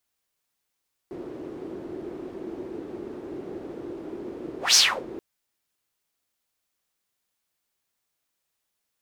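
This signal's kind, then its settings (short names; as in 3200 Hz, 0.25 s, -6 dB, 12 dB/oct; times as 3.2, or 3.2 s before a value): whoosh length 4.08 s, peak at 3.64, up 0.16 s, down 0.31 s, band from 350 Hz, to 5600 Hz, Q 5, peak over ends 21.5 dB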